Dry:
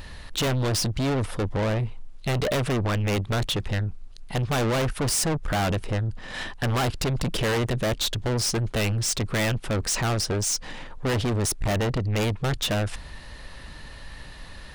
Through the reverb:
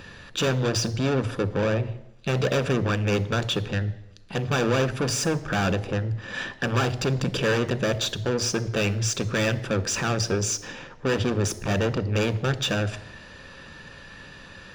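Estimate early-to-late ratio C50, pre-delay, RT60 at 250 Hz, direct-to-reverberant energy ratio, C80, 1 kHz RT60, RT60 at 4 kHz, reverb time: 16.5 dB, 3 ms, 0.85 s, 11.5 dB, 18.5 dB, 0.85 s, 0.85 s, 0.85 s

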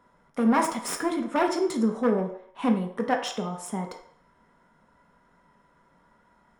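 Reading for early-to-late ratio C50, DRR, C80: 7.5 dB, 2.0 dB, 11.5 dB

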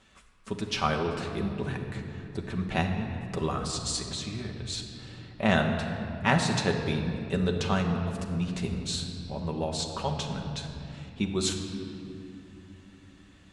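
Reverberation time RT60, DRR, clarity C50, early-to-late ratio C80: 2.7 s, 1.5 dB, 5.0 dB, 6.0 dB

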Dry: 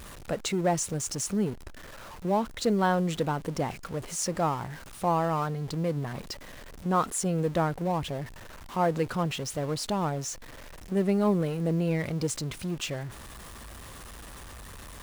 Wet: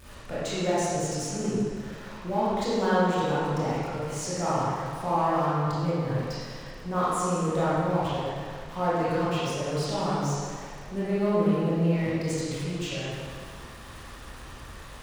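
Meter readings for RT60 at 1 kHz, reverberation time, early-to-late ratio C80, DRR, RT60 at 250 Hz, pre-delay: 2.0 s, 2.0 s, −1.5 dB, −10.0 dB, 1.8 s, 20 ms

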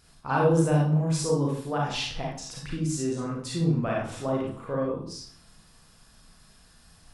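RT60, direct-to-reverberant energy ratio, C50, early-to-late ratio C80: 0.55 s, −3.5 dB, 1.5 dB, 7.0 dB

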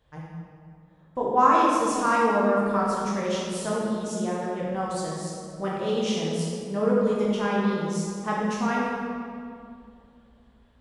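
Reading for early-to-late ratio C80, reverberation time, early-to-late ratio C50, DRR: 0.5 dB, 2.3 s, −1.5 dB, −5.5 dB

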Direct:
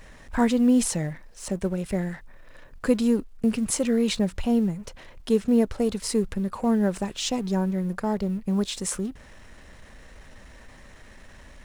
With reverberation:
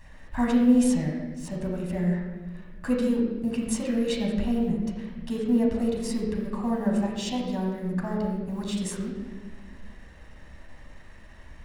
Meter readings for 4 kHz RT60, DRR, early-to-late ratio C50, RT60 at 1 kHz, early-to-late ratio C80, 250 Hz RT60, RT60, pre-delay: 1.1 s, −3.0 dB, 2.0 dB, 1.1 s, 3.5 dB, 2.2 s, 1.3 s, 12 ms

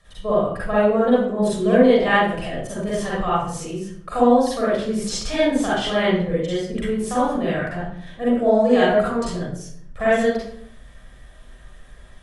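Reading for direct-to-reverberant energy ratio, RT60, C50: −9.0 dB, 0.65 s, −4.0 dB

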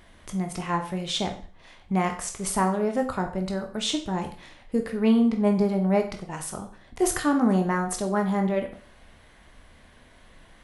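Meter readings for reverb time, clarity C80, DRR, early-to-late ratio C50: 0.45 s, 14.0 dB, 3.5 dB, 10.0 dB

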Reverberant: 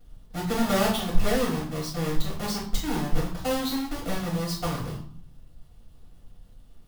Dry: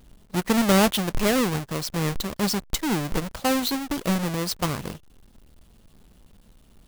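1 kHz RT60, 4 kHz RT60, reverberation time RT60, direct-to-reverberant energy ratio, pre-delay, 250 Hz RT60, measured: 0.60 s, 0.40 s, 0.55 s, −8.0 dB, 3 ms, 0.90 s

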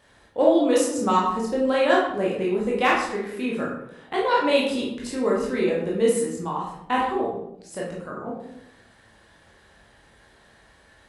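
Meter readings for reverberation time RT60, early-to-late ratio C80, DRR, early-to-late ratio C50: 0.80 s, 6.0 dB, −5.0 dB, 2.5 dB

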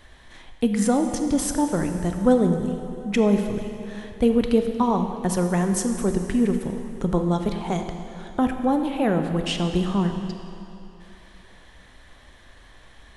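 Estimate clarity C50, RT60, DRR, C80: 6.5 dB, 3.0 s, 5.5 dB, 7.0 dB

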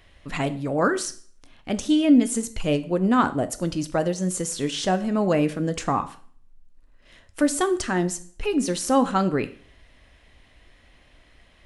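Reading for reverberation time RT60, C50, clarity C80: 0.50 s, 16.0 dB, 19.5 dB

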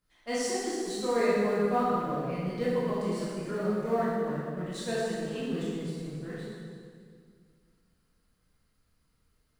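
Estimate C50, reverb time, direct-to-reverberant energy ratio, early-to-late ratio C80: −3.0 dB, 2.0 s, −8.5 dB, −0.5 dB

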